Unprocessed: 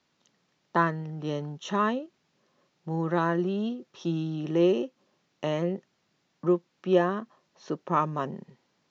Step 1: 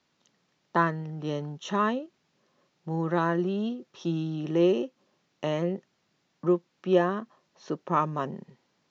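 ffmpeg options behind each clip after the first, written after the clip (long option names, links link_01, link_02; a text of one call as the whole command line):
ffmpeg -i in.wav -af anull out.wav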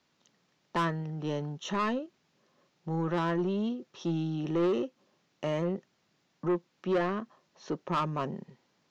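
ffmpeg -i in.wav -af "asoftclip=type=tanh:threshold=-23dB" out.wav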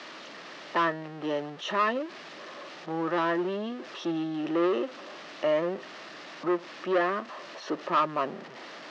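ffmpeg -i in.wav -af "aeval=exprs='val(0)+0.5*0.0106*sgn(val(0))':channel_layout=same,highpass=310,equalizer=frequency=310:width_type=q:width=4:gain=5,equalizer=frequency=620:width_type=q:width=4:gain=7,equalizer=frequency=1200:width_type=q:width=4:gain=6,equalizer=frequency=1800:width_type=q:width=4:gain=6,equalizer=frequency=2800:width_type=q:width=4:gain=3,lowpass=frequency=5300:width=0.5412,lowpass=frequency=5300:width=1.3066" out.wav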